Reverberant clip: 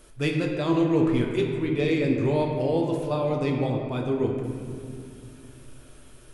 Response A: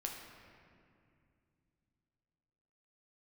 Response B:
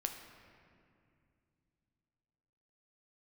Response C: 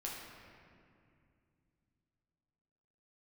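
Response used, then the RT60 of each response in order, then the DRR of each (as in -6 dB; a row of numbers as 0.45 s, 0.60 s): A; 2.4 s, 2.4 s, 2.4 s; 0.0 dB, 4.0 dB, -4.5 dB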